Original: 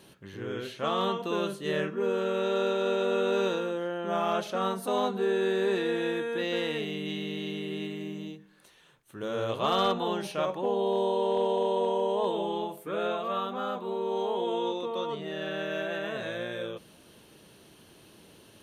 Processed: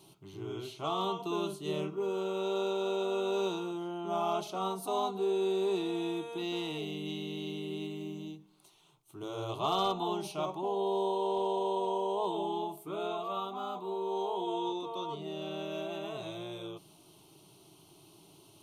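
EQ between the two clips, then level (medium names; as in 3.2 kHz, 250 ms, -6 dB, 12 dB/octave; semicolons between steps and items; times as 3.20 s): static phaser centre 340 Hz, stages 8; -1.0 dB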